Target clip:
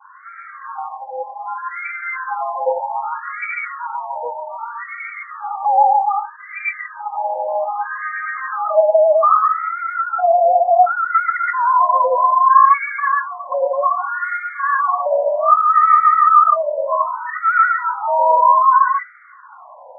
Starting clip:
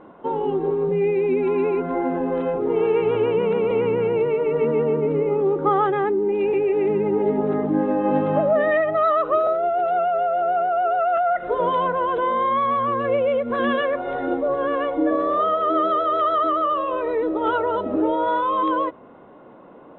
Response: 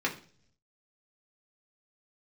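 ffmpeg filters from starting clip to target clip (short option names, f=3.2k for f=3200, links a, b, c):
-filter_complex "[0:a]adynamicequalizer=threshold=0.0224:dfrequency=1400:dqfactor=1.7:tfrequency=1400:tqfactor=1.7:attack=5:release=100:ratio=0.375:range=1.5:mode=cutabove:tftype=bell,crystalizer=i=7.5:c=0,asplit=2[a][b];[1:a]atrim=start_sample=2205,highshelf=f=3k:g=10,adelay=115[c];[b][c]afir=irnorm=-1:irlink=0,volume=-9dB[d];[a][d]amix=inputs=2:normalize=0,afftfilt=real='re*between(b*sr/1024,720*pow(1700/720,0.5+0.5*sin(2*PI*0.64*pts/sr))/1.41,720*pow(1700/720,0.5+0.5*sin(2*PI*0.64*pts/sr))*1.41)':imag='im*between(b*sr/1024,720*pow(1700/720,0.5+0.5*sin(2*PI*0.64*pts/sr))/1.41,720*pow(1700/720,0.5+0.5*sin(2*PI*0.64*pts/sr))*1.41)':win_size=1024:overlap=0.75,volume=6dB"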